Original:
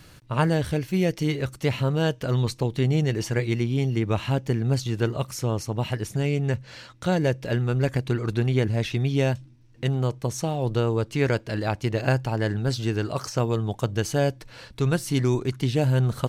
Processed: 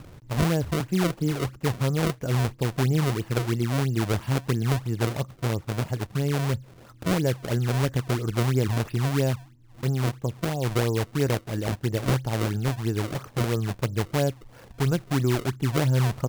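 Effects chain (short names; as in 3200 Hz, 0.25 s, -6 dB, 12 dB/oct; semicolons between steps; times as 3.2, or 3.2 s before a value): upward compressor, threshold -36 dBFS; tape spacing loss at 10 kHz 38 dB; decimation with a swept rate 30×, swing 160% 3 Hz; 0.8–1.61 three-band squash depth 40%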